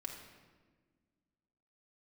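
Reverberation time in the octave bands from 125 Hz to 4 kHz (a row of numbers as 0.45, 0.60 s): 2.1, 2.3, 1.7, 1.3, 1.2, 1.0 s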